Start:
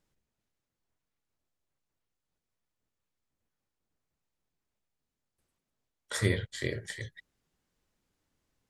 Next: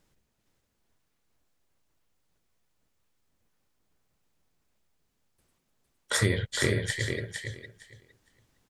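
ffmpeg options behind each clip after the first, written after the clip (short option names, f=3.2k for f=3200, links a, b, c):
-filter_complex "[0:a]acompressor=threshold=-30dB:ratio=4,asplit=2[a][b];[b]aecho=0:1:459|918|1377:0.531|0.0903|0.0153[c];[a][c]amix=inputs=2:normalize=0,volume=8.5dB"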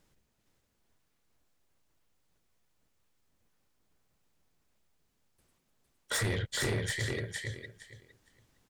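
-af "asoftclip=type=tanh:threshold=-27dB"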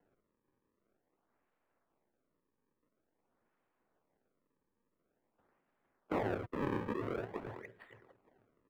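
-filter_complex "[0:a]acrossover=split=110[a][b];[b]acrusher=samples=36:mix=1:aa=0.000001:lfo=1:lforange=57.6:lforate=0.48[c];[a][c]amix=inputs=2:normalize=0,acrossover=split=210 2300:gain=0.2 1 0.0631[d][e][f];[d][e][f]amix=inputs=3:normalize=0"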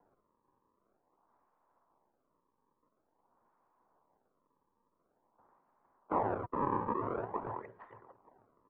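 -filter_complex "[0:a]asplit=2[a][b];[b]alimiter=level_in=7dB:limit=-24dB:level=0:latency=1:release=129,volume=-7dB,volume=1dB[c];[a][c]amix=inputs=2:normalize=0,lowpass=f=1k:t=q:w=4,crystalizer=i=3.5:c=0,volume=-5.5dB"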